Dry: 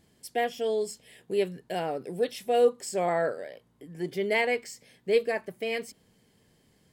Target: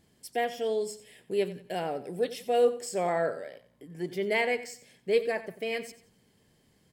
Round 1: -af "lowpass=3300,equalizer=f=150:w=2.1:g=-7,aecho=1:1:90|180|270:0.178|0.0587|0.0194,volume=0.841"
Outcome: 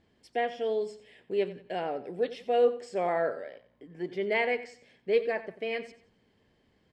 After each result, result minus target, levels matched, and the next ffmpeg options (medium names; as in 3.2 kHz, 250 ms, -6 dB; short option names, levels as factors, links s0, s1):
125 Hz band -4.0 dB; 4 kHz band -3.0 dB
-af "lowpass=3300,aecho=1:1:90|180|270:0.178|0.0587|0.0194,volume=0.841"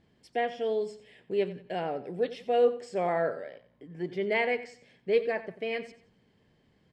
4 kHz band -3.0 dB
-af "aecho=1:1:90|180|270:0.178|0.0587|0.0194,volume=0.841"